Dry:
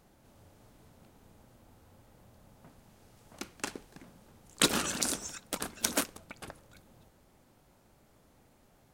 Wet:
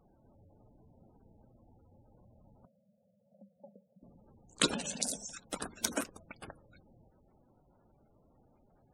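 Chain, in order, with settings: 2.65–4.03 double band-pass 330 Hz, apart 1.5 oct; spectral gate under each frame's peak -15 dB strong; 4.74–5.33 fixed phaser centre 340 Hz, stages 6; gain -2 dB

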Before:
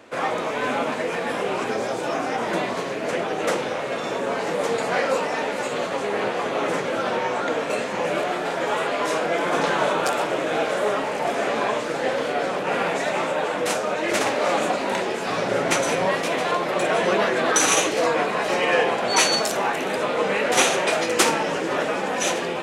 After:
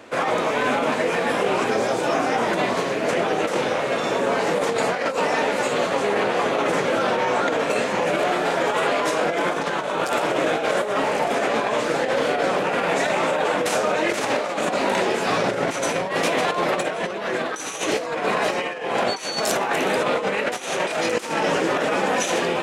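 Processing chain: negative-ratio compressor -24 dBFS, ratio -0.5; gain +2.5 dB

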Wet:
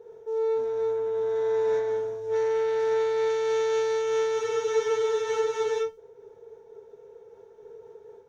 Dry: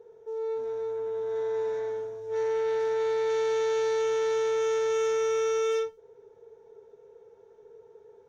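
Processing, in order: limiter -24 dBFS, peak gain reduction 4.5 dB; spectral freeze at 4.41, 1.39 s; noise-modulated level, depth 50%; gain +7 dB

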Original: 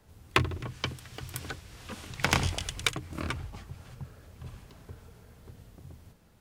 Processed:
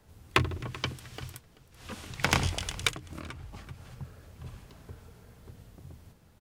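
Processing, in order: 1.34–1.77 room tone, crossfade 0.16 s; echo 0.384 s -19 dB; 2.89–3.95 compressor 6:1, threshold -38 dBFS, peak gain reduction 10 dB

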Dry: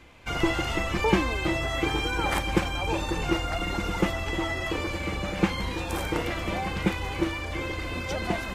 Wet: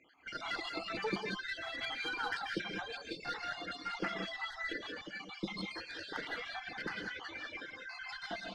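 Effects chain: random spectral dropouts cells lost 61%; speaker cabinet 340–4900 Hz, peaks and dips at 360 Hz -5 dB, 550 Hz -9 dB, 1000 Hz -7 dB, 1600 Hz +7 dB, 2600 Hz -8 dB, 4500 Hz +10 dB; added harmonics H 8 -28 dB, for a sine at -17.5 dBFS; non-linear reverb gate 0.22 s rising, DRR -0.5 dB; reverb removal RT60 1.1 s; gain -6 dB

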